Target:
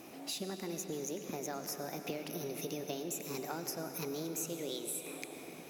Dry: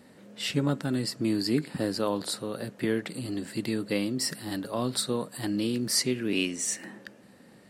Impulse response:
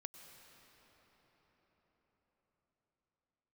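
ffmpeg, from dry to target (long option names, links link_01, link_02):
-filter_complex "[0:a]acrossover=split=9400[link_01][link_02];[link_02]acompressor=threshold=-48dB:ratio=4:attack=1:release=60[link_03];[link_01][link_03]amix=inputs=2:normalize=0,highshelf=frequency=5900:gain=9,acompressor=threshold=-40dB:ratio=8,asetrate=59535,aresample=44100[link_04];[1:a]atrim=start_sample=2205[link_05];[link_04][link_05]afir=irnorm=-1:irlink=0,volume=8dB"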